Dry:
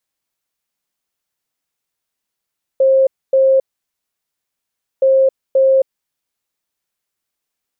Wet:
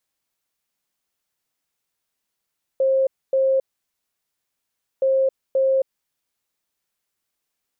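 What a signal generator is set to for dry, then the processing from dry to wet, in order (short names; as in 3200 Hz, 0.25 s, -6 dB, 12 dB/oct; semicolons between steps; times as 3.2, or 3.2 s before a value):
beep pattern sine 533 Hz, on 0.27 s, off 0.26 s, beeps 2, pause 1.42 s, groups 2, -8 dBFS
limiter -15 dBFS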